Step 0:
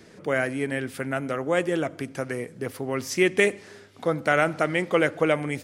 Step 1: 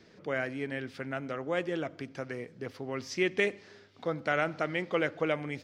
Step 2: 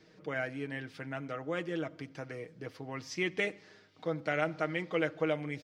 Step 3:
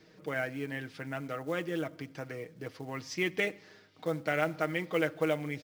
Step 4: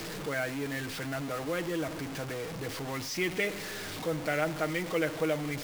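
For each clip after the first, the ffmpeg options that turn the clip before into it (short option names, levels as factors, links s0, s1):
-af "highshelf=f=7000:t=q:w=1.5:g=-13,volume=0.398"
-af "aecho=1:1:6.4:0.55,volume=0.631"
-af "acrusher=bits=6:mode=log:mix=0:aa=0.000001,volume=1.19"
-af "aeval=exprs='val(0)+0.5*0.02*sgn(val(0))':c=same,acrusher=bits=8:dc=4:mix=0:aa=0.000001,volume=0.841"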